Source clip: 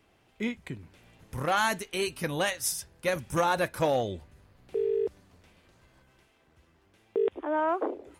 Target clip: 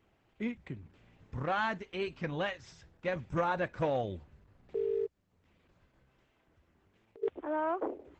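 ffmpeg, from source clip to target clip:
-filter_complex "[0:a]acrossover=split=4400[a][b];[b]acompressor=threshold=-47dB:ratio=4:attack=1:release=60[c];[a][c]amix=inputs=2:normalize=0,bass=f=250:g=3,treble=f=4k:g=-10,asplit=3[d][e][f];[d]afade=t=out:st=5.05:d=0.02[g];[e]acompressor=threshold=-58dB:ratio=3,afade=t=in:st=5.05:d=0.02,afade=t=out:st=7.22:d=0.02[h];[f]afade=t=in:st=7.22:d=0.02[i];[g][h][i]amix=inputs=3:normalize=0,volume=-5dB" -ar 48000 -c:a libopus -b:a 12k

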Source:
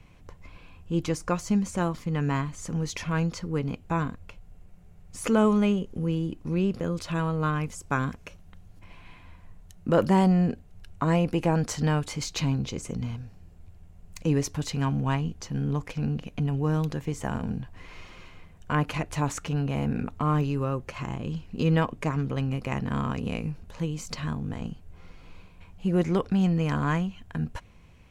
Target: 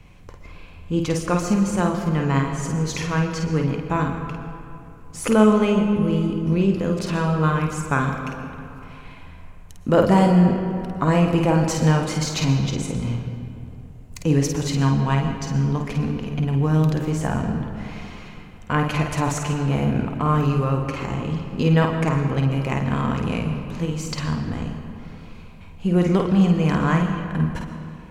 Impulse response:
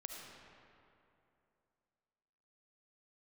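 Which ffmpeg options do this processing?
-filter_complex "[0:a]asplit=2[a][b];[1:a]atrim=start_sample=2205,adelay=51[c];[b][c]afir=irnorm=-1:irlink=0,volume=0.5dB[d];[a][d]amix=inputs=2:normalize=0,volume=4.5dB"

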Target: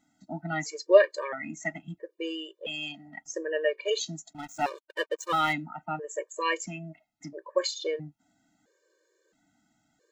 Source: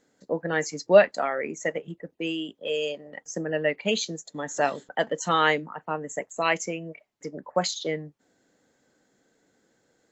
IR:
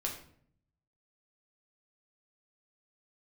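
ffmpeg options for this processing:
-filter_complex "[0:a]asettb=1/sr,asplit=3[a][b][c];[a]atrim=end=4.334[d];[b]atrim=start=4.33:end=5.53,asetpts=PTS-STARTPTS,afade=t=in:d=0.004:c=qsin,afade=t=out:st=1.196:d=0.004:c=qsin,aeval=exprs='sgn(val(0))*max(abs(val(0))-0.0141,0)':c=same[e];[c]atrim=start=5.526[f];[d][e]acrossfade=d=0.004:c1=hsin:c2=qsin[g];[g][f]acrossfade=d=0.004:c1=qsin:c2=hsin,afftfilt=real='re*gt(sin(2*PI*0.75*pts/sr)*(1-2*mod(floor(b*sr/1024/310),2)),0)':imag='im*gt(sin(2*PI*0.75*pts/sr)*(1-2*mod(floor(b*sr/1024/310),2)),0)':win_size=1024:overlap=0.75"

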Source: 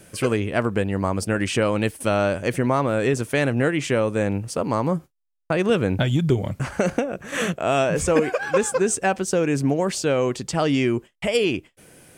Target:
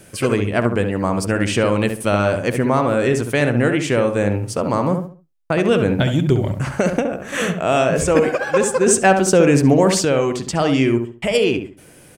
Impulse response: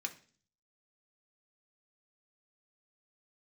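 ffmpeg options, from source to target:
-filter_complex "[0:a]asplit=2[a][b];[b]adelay=68,lowpass=f=1.6k:p=1,volume=-5.5dB,asplit=2[c][d];[d]adelay=68,lowpass=f=1.6k:p=1,volume=0.33,asplit=2[e][f];[f]adelay=68,lowpass=f=1.6k:p=1,volume=0.33,asplit=2[g][h];[h]adelay=68,lowpass=f=1.6k:p=1,volume=0.33[i];[a][c][e][g][i]amix=inputs=5:normalize=0,asettb=1/sr,asplit=3[j][k][l];[j]atrim=end=8.864[m];[k]atrim=start=8.86:end=10.05,asetpts=PTS-STARTPTS,afade=t=in:d=0.004:c=qsin,afade=t=out:st=1.186:d=0.004:c=qsin,acontrast=23[n];[l]atrim=start=10.046[o];[m][n]acrossfade=d=0.004:c1=hsin:c2=qsin[p];[p][o]acrossfade=d=0.004:c1=qsin:c2=hsin,volume=3dB"

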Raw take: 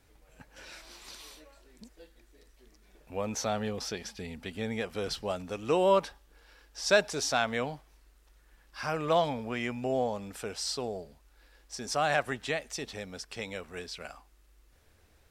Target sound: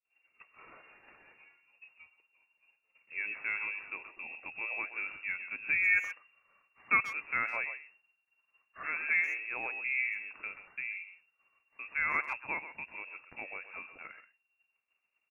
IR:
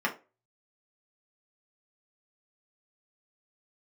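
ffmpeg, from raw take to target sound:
-filter_complex "[0:a]lowpass=f=2.4k:t=q:w=0.5098,lowpass=f=2.4k:t=q:w=0.6013,lowpass=f=2.4k:t=q:w=0.9,lowpass=f=2.4k:t=q:w=2.563,afreqshift=-2800,asplit=2[a][b];[b]adelay=130,highpass=300,lowpass=3.4k,asoftclip=type=hard:threshold=-19.5dB,volume=-11dB[c];[a][c]amix=inputs=2:normalize=0,agate=range=-33dB:threshold=-52dB:ratio=3:detection=peak,volume=-4dB"

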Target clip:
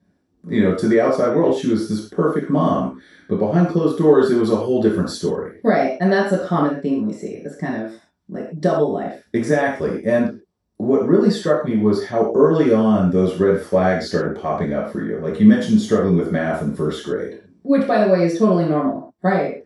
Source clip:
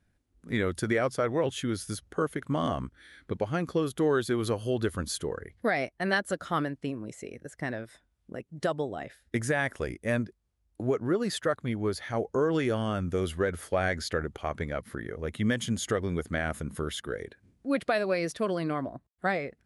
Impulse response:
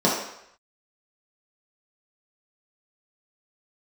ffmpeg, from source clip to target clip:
-filter_complex "[0:a]asettb=1/sr,asplit=3[a][b][c];[a]atrim=end=7.524[d];[b]atrim=start=7.52:end=8.35,asetpts=PTS-STARTPTS,afade=t=in:d=0.004:c=qsin,afade=t=out:st=0.826:d=0.004:c=qsin,equalizer=f=500:w=2.9:g=-10.5[e];[c]atrim=start=8.346[f];[d][e]acrossfade=d=0.004:c1=hsin:c2=qsin[g];[g][f]acrossfade=d=0.004:c1=qsin:c2=hsin[h];[1:a]atrim=start_sample=2205,atrim=end_sample=6174[i];[h][i]afir=irnorm=-1:irlink=0,volume=-9.5dB"

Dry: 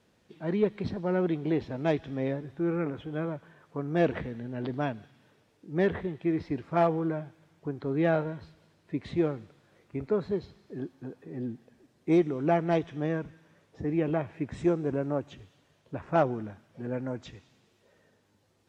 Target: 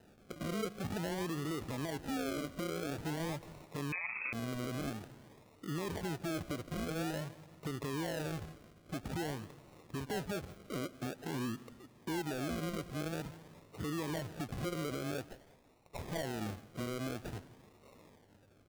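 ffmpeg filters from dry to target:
-filter_complex "[0:a]asettb=1/sr,asplit=3[a][b][c];[a]atrim=end=1.984[d];[b]atrim=start=1.98:end=2.87,asetpts=PTS-STARTPTS,afade=t=in:d=0.004:c=qsin,afade=t=out:st=0.886:d=0.004:c=qsin,aecho=1:1:4:0.86,atrim=end_sample=39249[e];[c]atrim=start=2.866[f];[d][e]acrossfade=d=0.004:c1=hsin:c2=qsin[g];[g][f]acrossfade=d=0.004:c1=qsin:c2=hsin,asettb=1/sr,asplit=3[h][i][j];[h]atrim=end=15.264[k];[i]atrim=start=15.26:end=15.99,asetpts=PTS-STARTPTS,afade=t=in:d=0.004:c=qsin,afade=t=out:st=0.726:d=0.004:c=qsin,highpass=1.3k[l];[j]atrim=start=15.986[m];[k][l]acrossfade=d=0.004:c1=hsin:c2=qsin[n];[n][m]acrossfade=d=0.004:c1=qsin:c2=hsin,acompressor=threshold=-38dB:ratio=2,alimiter=level_in=12dB:limit=-24dB:level=0:latency=1:release=48,volume=-12dB,acrusher=samples=39:mix=1:aa=0.000001:lfo=1:lforange=23.4:lforate=0.49,aecho=1:1:169|338|507:0.0891|0.0365|0.015,asettb=1/sr,asplit=3[o][p][q];[o]atrim=end=3.924[r];[p]atrim=start=3.92:end=4.33,asetpts=PTS-STARTPTS,afade=t=in:d=0.004:c=qsin,afade=t=out:st=0.406:d=0.004:c=qsin,lowpass=f=2.3k:t=q:w=0.5098,lowpass=f=2.3k:t=q:w=0.6013,lowpass=f=2.3k:t=q:w=0.9,lowpass=f=2.3k:t=q:w=2.563,afreqshift=-2700[s];[q]atrim=start=4.326[t];[r][s]acrossfade=d=0.004:c1=hsin:c2=qsin[u];[u][t]acrossfade=d=0.004:c1=qsin:c2=hsin,volume=5dB"

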